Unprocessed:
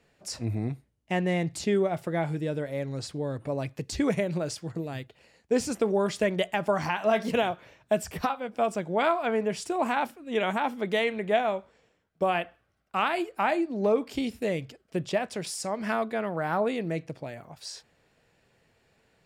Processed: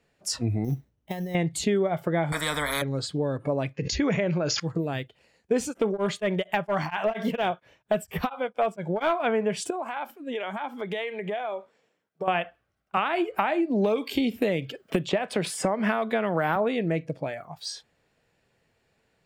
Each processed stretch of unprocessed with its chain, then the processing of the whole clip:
0.64–1.35 s: treble shelf 3.5 kHz -9 dB + compressor with a negative ratio -33 dBFS, ratio -0.5 + sample-rate reducer 5.9 kHz
2.32–2.82 s: tilt EQ -2 dB/octave + static phaser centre 540 Hz, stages 8 + spectrum-flattening compressor 10:1
3.73–4.60 s: rippled Chebyshev low-pass 7 kHz, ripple 3 dB + decay stretcher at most 23 dB/s
5.63–9.20 s: overload inside the chain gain 18.5 dB + tremolo of two beating tones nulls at 4.3 Hz
9.70–12.28 s: high-pass 180 Hz + compression 10:1, threshold -34 dBFS
12.97–16.56 s: high-pass 79 Hz + three bands compressed up and down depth 100%
whole clip: spectral noise reduction 11 dB; compression 2.5:1, threshold -31 dBFS; trim +7.5 dB

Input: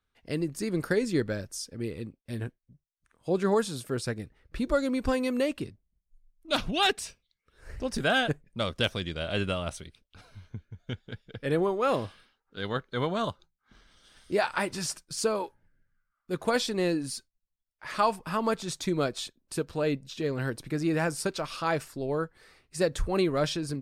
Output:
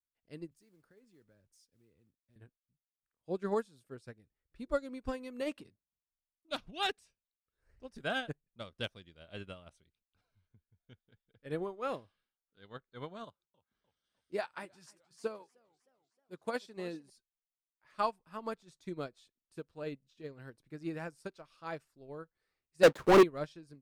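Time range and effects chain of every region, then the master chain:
0.51–2.36 s: compression 3:1, threshold -39 dBFS + modulation noise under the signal 17 dB + three bands expanded up and down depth 70%
5.41–6.51 s: high-pass 230 Hz 6 dB/octave + transient shaper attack +8 dB, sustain +12 dB
13.24–17.10 s: high-pass 110 Hz 6 dB/octave + modulated delay 306 ms, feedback 55%, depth 182 cents, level -16 dB
22.83–23.23 s: median filter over 15 samples + high-pass 250 Hz + waveshaping leveller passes 5
whole clip: treble shelf 4.4 kHz -2.5 dB; upward expansion 2.5:1, over -35 dBFS; trim +1 dB

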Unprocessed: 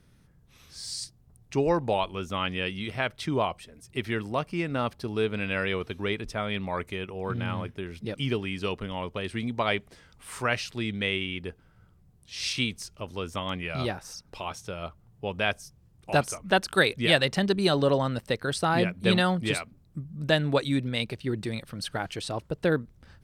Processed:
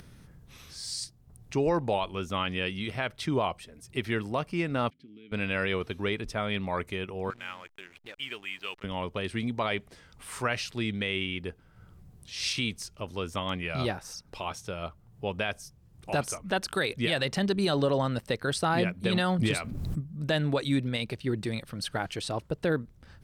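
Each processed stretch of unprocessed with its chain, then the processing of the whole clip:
4.90–5.32 s: peaking EQ 150 Hz +13 dB 0.48 oct + compression, threshold -33 dBFS + vowel filter i
7.30–8.84 s: band-pass filter 2.3 kHz, Q 1.1 + hysteresis with a dead band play -46.5 dBFS
19.39–20.01 s: bass shelf 180 Hz +4.5 dB + overload inside the chain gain 14 dB + swell ahead of each attack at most 26 dB/s
whole clip: upward compressor, threshold -43 dBFS; peak limiter -17 dBFS

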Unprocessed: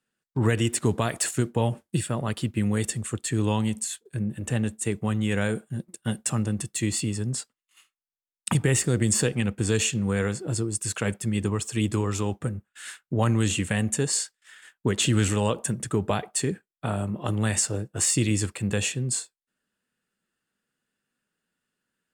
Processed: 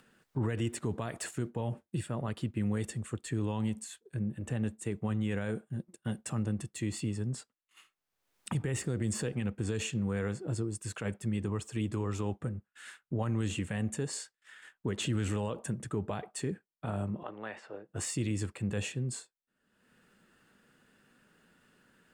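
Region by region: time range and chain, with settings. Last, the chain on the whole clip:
17.23–17.89 s: high-pass 500 Hz + distance through air 360 m
whole clip: treble shelf 3.1 kHz -10 dB; peak limiter -18 dBFS; upward compressor, threshold -40 dBFS; trim -5.5 dB

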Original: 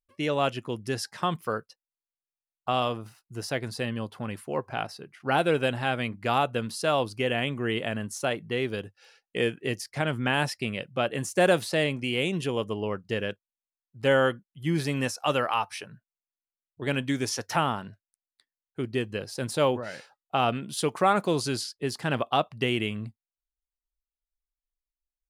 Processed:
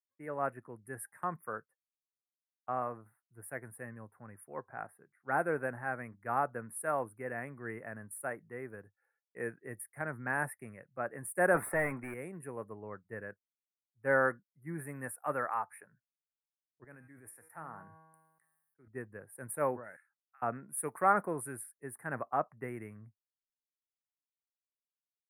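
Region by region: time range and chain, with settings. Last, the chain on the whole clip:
11.54–12.14 s: comb 0.9 ms, depth 33% + overdrive pedal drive 21 dB, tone 2.1 kHz, clips at -12.5 dBFS
16.84–18.88 s: high-pass 43 Hz + feedback comb 160 Hz, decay 0.91 s, mix 70% + decay stretcher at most 24 dB/s
19.96–20.42 s: high-pass 1.4 kHz 24 dB/octave + compression 2:1, threshold -41 dBFS
whole clip: elliptic band-stop 1.8–9.8 kHz, stop band 40 dB; tilt shelf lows -5 dB, about 810 Hz; three bands expanded up and down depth 70%; trim -9 dB

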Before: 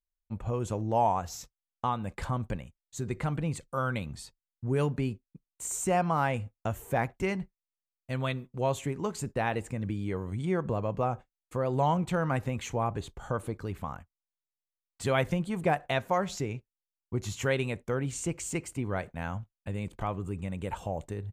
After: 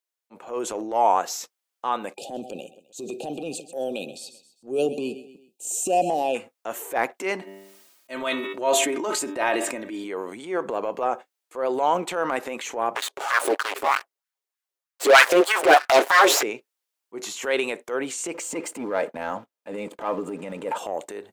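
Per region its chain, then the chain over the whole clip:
2.14–6.35 s: brick-wall FIR band-stop 840–2400 Hz + bass shelf 330 Hz +5 dB + feedback delay 129 ms, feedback 40%, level -18 dB
7.41–10.04 s: comb 3.2 ms + de-hum 97.16 Hz, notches 39 + decay stretcher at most 42 dB/s
12.95–16.43 s: comb filter that takes the minimum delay 7.3 ms + LFO high-pass sine 3.2 Hz 330–1600 Hz + waveshaping leveller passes 3
18.34–20.78 s: tilt shelf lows +5.5 dB, about 1.2 kHz + waveshaping leveller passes 1 + comb of notches 370 Hz
whole clip: high-pass 330 Hz 24 dB/octave; transient shaper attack -8 dB, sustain +5 dB; trim +7.5 dB

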